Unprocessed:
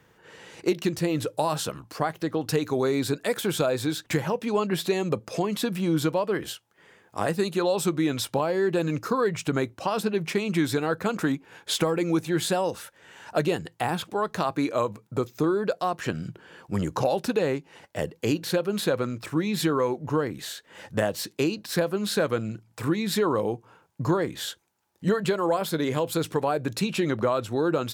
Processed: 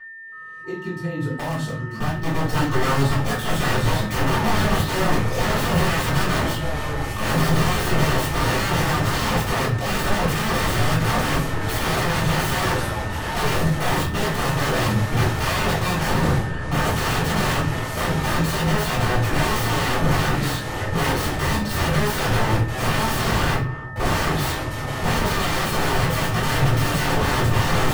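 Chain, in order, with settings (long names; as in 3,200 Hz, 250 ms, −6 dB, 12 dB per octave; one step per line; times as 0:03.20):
fade in at the beginning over 7.84 s
brickwall limiter −17.5 dBFS, peak gain reduction 7 dB
parametric band 1,000 Hz −3 dB 1.6 octaves
wrap-around overflow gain 31 dB
steady tone 1,800 Hz −50 dBFS
high-shelf EQ 3,400 Hz −10 dB
notch filter 2,200 Hz, Q 27
convolution reverb RT60 0.45 s, pre-delay 3 ms, DRR −9 dB
delay with pitch and tempo change per echo 320 ms, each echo −6 semitones, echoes 2, each echo −6 dB
level +4.5 dB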